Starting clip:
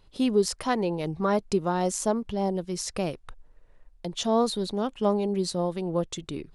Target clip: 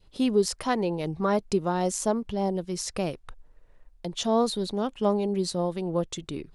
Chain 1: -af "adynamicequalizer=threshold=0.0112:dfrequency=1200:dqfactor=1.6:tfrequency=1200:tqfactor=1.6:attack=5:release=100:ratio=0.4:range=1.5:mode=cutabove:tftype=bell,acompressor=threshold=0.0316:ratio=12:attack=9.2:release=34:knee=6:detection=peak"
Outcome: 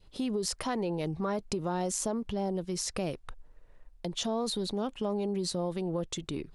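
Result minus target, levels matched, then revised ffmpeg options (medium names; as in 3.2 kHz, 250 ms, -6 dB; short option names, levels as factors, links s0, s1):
compression: peak gain reduction +12.5 dB
-af "adynamicequalizer=threshold=0.0112:dfrequency=1200:dqfactor=1.6:tfrequency=1200:tqfactor=1.6:attack=5:release=100:ratio=0.4:range=1.5:mode=cutabove:tftype=bell"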